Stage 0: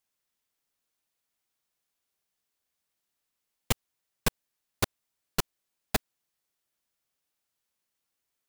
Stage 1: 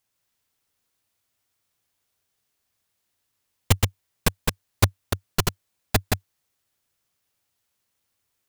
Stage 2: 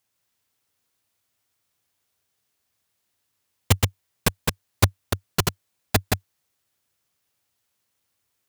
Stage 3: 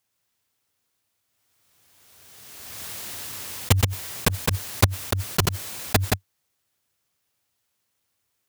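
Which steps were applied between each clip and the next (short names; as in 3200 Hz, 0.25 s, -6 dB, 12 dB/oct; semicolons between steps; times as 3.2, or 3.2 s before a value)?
reverse delay 0.151 s, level -3 dB; bell 96 Hz +11.5 dB 0.63 oct; gain +5 dB
HPF 53 Hz; gain +1 dB
backwards sustainer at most 25 dB/s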